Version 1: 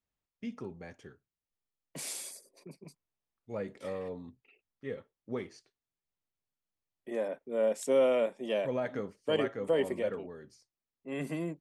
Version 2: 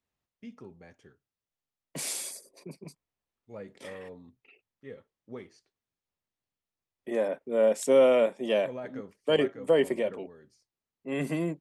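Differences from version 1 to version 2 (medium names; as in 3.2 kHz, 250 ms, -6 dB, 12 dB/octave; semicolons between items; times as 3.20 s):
first voice -5.5 dB; second voice +5.5 dB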